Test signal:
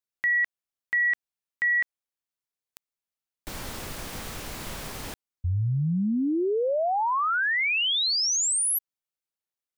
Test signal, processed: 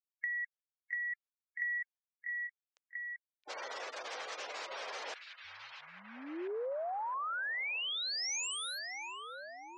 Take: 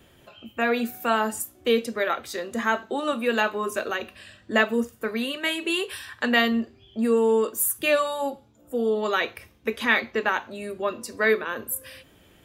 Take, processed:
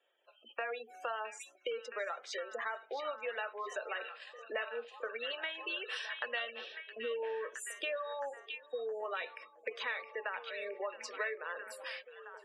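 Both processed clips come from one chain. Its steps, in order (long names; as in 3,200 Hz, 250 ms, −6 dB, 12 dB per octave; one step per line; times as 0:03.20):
noise gate −44 dBFS, range −18 dB
gate on every frequency bin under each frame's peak −20 dB strong
elliptic band-pass filter 500–6,300 Hz, stop band 50 dB
downward compressor 5 to 1, threshold −39 dBFS
echo through a band-pass that steps 667 ms, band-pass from 3,100 Hz, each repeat −0.7 octaves, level −4 dB
level +1 dB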